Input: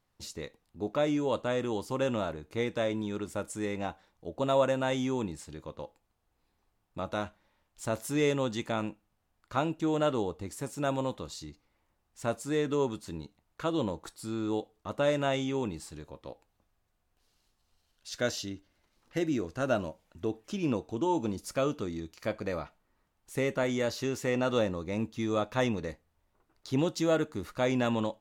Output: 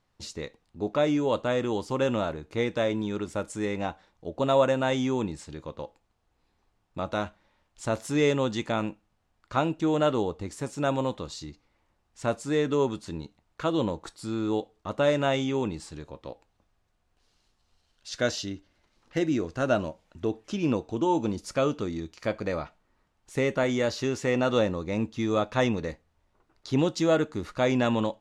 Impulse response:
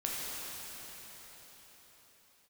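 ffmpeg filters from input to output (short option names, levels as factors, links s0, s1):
-af "lowpass=7500,volume=1.58"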